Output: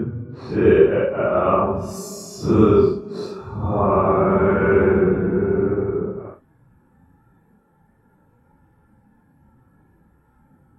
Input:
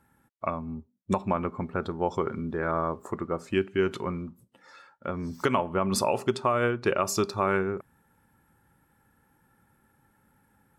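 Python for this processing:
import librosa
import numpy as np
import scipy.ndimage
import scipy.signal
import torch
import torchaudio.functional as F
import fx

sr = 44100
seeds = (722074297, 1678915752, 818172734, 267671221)

y = fx.paulstretch(x, sr, seeds[0], factor=6.0, window_s=0.05, from_s=6.76)
y = fx.tilt_shelf(y, sr, db=9.5, hz=1500.0)
y = y * librosa.db_to_amplitude(1.5)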